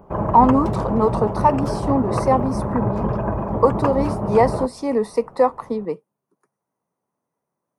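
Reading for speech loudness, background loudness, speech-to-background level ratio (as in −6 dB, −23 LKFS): −20.5 LKFS, −24.0 LKFS, 3.5 dB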